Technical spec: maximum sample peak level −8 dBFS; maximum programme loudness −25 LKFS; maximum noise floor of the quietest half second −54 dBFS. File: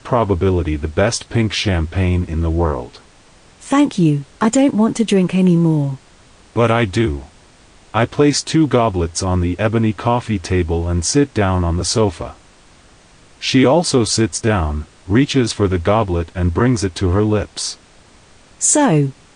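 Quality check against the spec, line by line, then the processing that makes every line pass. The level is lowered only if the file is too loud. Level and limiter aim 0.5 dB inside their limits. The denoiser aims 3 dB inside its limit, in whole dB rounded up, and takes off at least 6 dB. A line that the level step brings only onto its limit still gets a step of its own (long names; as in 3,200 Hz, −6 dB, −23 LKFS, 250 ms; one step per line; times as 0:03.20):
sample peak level −4.0 dBFS: out of spec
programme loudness −16.5 LKFS: out of spec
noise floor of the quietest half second −47 dBFS: out of spec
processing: level −9 dB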